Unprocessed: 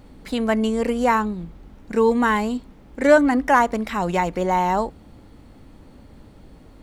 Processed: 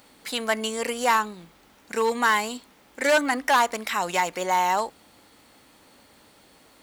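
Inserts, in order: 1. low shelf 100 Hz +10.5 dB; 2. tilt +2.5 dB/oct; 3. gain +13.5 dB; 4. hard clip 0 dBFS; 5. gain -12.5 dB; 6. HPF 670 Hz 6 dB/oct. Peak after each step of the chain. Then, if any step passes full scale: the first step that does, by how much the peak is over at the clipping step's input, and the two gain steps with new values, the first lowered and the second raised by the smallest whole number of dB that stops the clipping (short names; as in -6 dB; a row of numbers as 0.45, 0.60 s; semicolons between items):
-3.0, -3.5, +10.0, 0.0, -12.5, -8.5 dBFS; step 3, 10.0 dB; step 3 +3.5 dB, step 5 -2.5 dB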